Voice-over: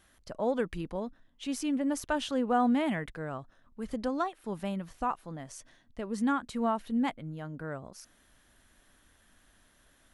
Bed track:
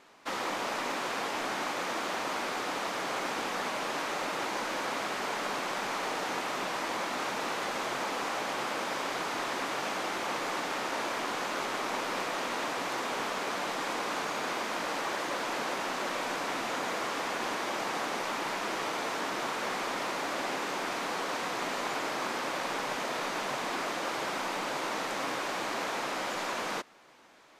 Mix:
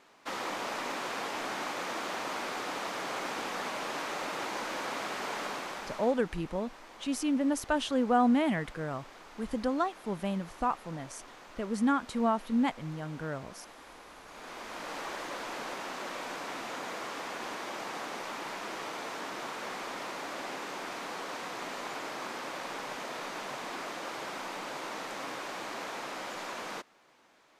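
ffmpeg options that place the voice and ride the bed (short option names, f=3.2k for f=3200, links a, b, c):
-filter_complex "[0:a]adelay=5600,volume=1.5dB[a];[1:a]volume=10dB,afade=t=out:st=5.41:d=0.81:silence=0.16788,afade=t=in:st=14.24:d=0.75:silence=0.237137[b];[a][b]amix=inputs=2:normalize=0"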